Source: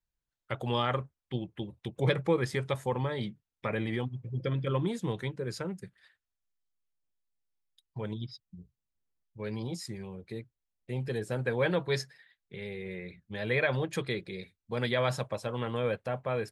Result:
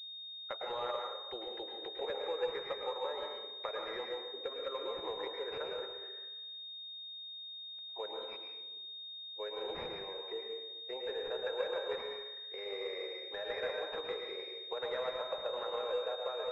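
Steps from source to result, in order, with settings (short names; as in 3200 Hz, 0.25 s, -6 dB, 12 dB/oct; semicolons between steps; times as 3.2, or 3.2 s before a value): steep high-pass 440 Hz 36 dB/oct; compressor 4:1, threshold -44 dBFS, peak gain reduction 17 dB; plate-style reverb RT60 1.1 s, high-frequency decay 0.65×, pre-delay 95 ms, DRR 0.5 dB; pulse-width modulation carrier 3700 Hz; gain +5 dB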